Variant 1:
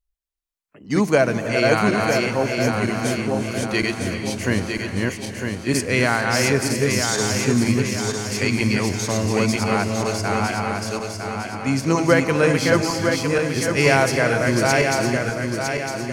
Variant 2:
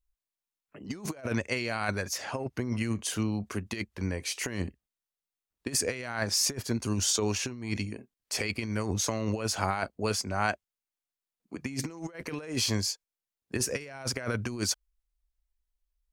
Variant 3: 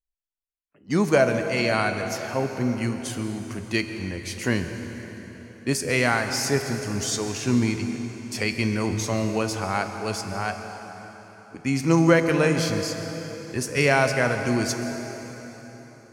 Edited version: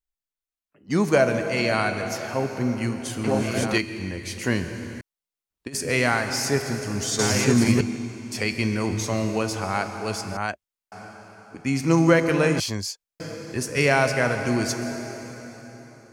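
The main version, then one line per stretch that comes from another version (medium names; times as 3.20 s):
3
3.24–3.78 s: from 1
5.01–5.75 s: from 2
7.19–7.81 s: from 1
10.37–10.92 s: from 2
12.60–13.20 s: from 2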